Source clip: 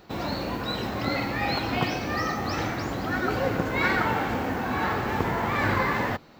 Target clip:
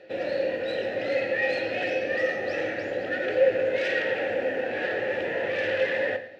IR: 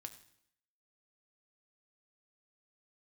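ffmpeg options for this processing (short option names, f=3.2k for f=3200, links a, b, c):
-filter_complex "[0:a]aeval=exprs='0.316*sin(PI/2*3.98*val(0)/0.316)':c=same,asplit=3[a][b][c];[a]bandpass=f=530:t=q:w=8,volume=0dB[d];[b]bandpass=f=1.84k:t=q:w=8,volume=-6dB[e];[c]bandpass=f=2.48k:t=q:w=8,volume=-9dB[f];[d][e][f]amix=inputs=3:normalize=0[g];[1:a]atrim=start_sample=2205[h];[g][h]afir=irnorm=-1:irlink=0,volume=3.5dB"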